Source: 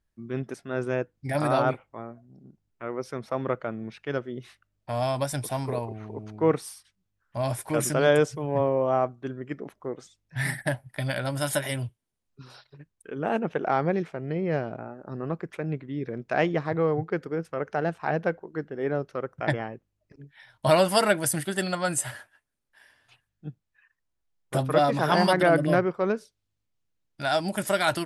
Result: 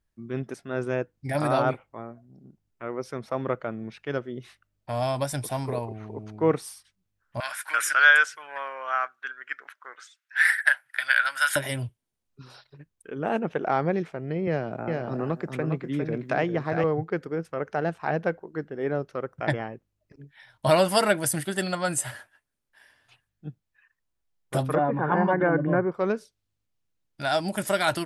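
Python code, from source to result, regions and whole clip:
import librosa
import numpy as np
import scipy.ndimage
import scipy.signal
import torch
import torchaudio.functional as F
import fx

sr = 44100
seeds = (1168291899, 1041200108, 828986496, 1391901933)

y = fx.chain(x, sr, fx.highpass_res(hz=1500.0, q=5.8),
    fx.peak_eq(hz=2800.0, db=4.0, octaves=1.2), at=(7.4, 11.56))
y = fx.chain(y, sr, fx.echo_multitap(ms=(404, 428), db=(-6.0, -18.0)),
    fx.band_squash(depth_pct=70), at=(14.47, 16.84))
y = fx.chain(y, sr, fx.lowpass(hz=1800.0, slope=24),
    fx.notch_comb(f0_hz=650.0), at=(24.75, 25.92))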